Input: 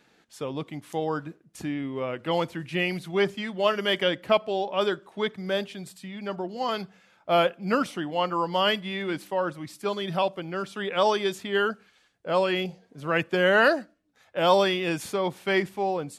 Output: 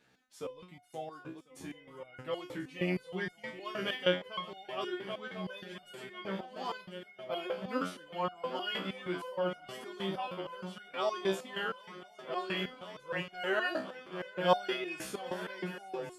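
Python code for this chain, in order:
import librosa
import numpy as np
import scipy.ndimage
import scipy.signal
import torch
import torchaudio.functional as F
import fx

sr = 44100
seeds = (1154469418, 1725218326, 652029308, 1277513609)

y = fx.echo_swing(x, sr, ms=1046, ratio=3, feedback_pct=74, wet_db=-14)
y = fx.resonator_held(y, sr, hz=6.4, low_hz=64.0, high_hz=720.0)
y = y * librosa.db_to_amplitude(1.0)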